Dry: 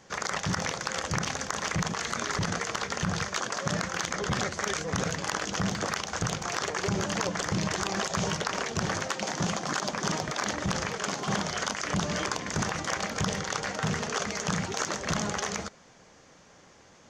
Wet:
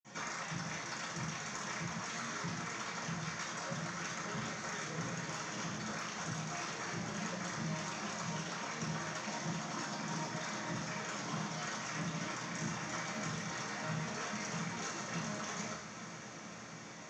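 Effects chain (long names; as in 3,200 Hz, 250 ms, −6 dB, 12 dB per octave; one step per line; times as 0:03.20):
downward compressor 10 to 1, threshold −41 dBFS, peak gain reduction 17 dB
feedback delay with all-pass diffusion 534 ms, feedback 76%, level −12 dB
convolution reverb RT60 1.0 s, pre-delay 47 ms
level +11.5 dB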